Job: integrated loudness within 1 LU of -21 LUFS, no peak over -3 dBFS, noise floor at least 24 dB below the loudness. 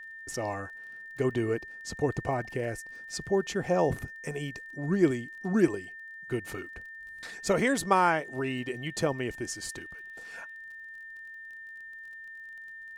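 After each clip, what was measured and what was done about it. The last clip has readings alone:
ticks 30/s; steady tone 1800 Hz; tone level -42 dBFS; loudness -30.5 LUFS; peak -9.0 dBFS; loudness target -21.0 LUFS
-> de-click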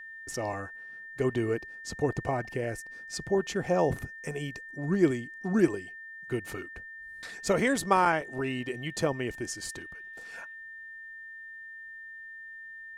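ticks 0/s; steady tone 1800 Hz; tone level -42 dBFS
-> notch 1800 Hz, Q 30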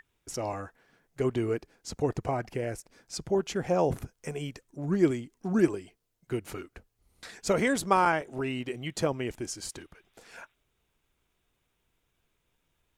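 steady tone none; loudness -30.5 LUFS; peak -9.5 dBFS; loudness target -21.0 LUFS
-> gain +9.5 dB; limiter -3 dBFS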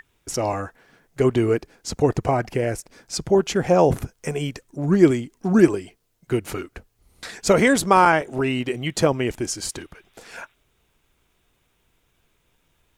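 loudness -21.0 LUFS; peak -3.0 dBFS; noise floor -68 dBFS

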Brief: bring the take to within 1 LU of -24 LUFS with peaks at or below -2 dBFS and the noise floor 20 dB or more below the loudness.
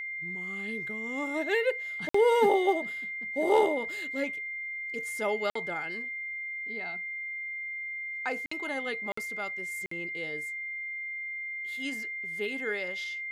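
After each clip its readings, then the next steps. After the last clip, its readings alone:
dropouts 5; longest dropout 54 ms; steady tone 2100 Hz; tone level -34 dBFS; loudness -31.0 LUFS; peak -13.0 dBFS; loudness target -24.0 LUFS
-> interpolate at 2.09/5.5/8.46/9.12/9.86, 54 ms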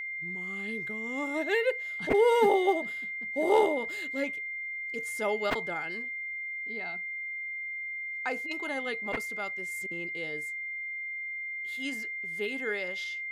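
dropouts 0; steady tone 2100 Hz; tone level -34 dBFS
-> notch 2100 Hz, Q 30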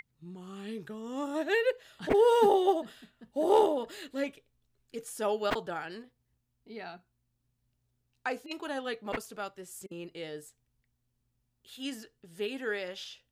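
steady tone none; loudness -31.0 LUFS; peak -13.5 dBFS; loudness target -24.0 LUFS
-> gain +7 dB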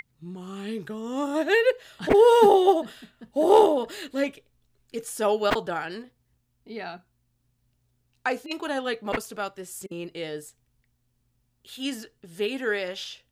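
loudness -24.0 LUFS; peak -6.5 dBFS; noise floor -72 dBFS

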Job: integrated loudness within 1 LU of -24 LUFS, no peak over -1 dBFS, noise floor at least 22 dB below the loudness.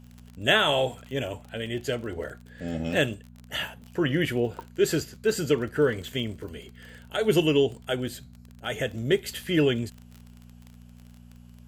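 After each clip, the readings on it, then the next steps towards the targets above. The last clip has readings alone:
ticks 31/s; hum 60 Hz; harmonics up to 240 Hz; hum level -45 dBFS; loudness -27.0 LUFS; peak -7.5 dBFS; loudness target -24.0 LUFS
-> de-click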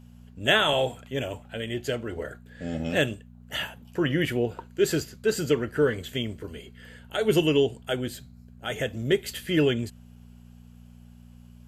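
ticks 0.086/s; hum 60 Hz; harmonics up to 240 Hz; hum level -45 dBFS
-> de-hum 60 Hz, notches 4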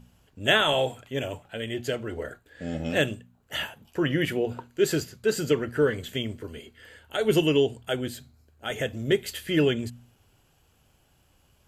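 hum none; loudness -27.0 LUFS; peak -7.5 dBFS; loudness target -24.0 LUFS
-> gain +3 dB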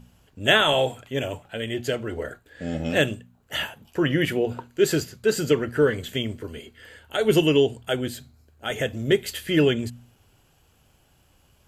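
loudness -24.0 LUFS; peak -4.5 dBFS; noise floor -61 dBFS

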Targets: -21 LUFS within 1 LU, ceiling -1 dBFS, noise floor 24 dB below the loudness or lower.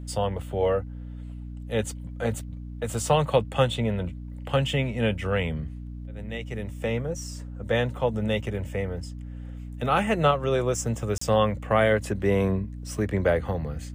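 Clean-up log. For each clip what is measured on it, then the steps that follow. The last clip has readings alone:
dropouts 1; longest dropout 34 ms; hum 60 Hz; harmonics up to 300 Hz; hum level -34 dBFS; loudness -26.5 LUFS; peak -9.0 dBFS; loudness target -21.0 LUFS
-> interpolate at 11.18, 34 ms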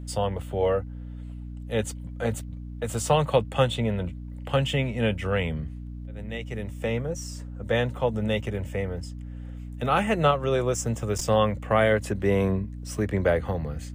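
dropouts 0; hum 60 Hz; harmonics up to 300 Hz; hum level -34 dBFS
-> de-hum 60 Hz, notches 5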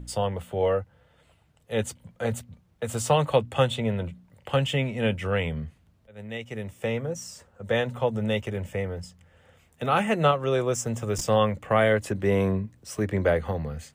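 hum none; loudness -26.5 LUFS; peak -9.0 dBFS; loudness target -21.0 LUFS
-> gain +5.5 dB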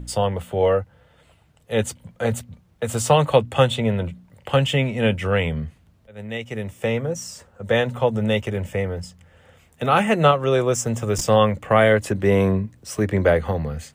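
loudness -21.0 LUFS; peak -3.5 dBFS; noise floor -57 dBFS

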